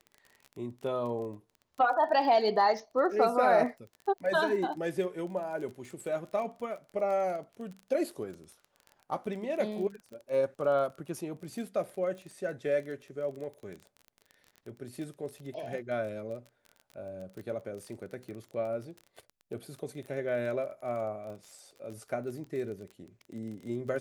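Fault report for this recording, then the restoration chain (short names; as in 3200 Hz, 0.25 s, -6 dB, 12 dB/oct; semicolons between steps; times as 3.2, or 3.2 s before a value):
crackle 26/s -39 dBFS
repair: de-click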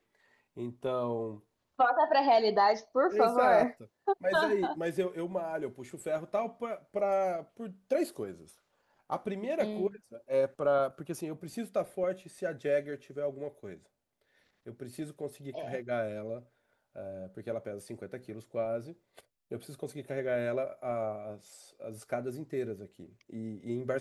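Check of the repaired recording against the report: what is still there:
none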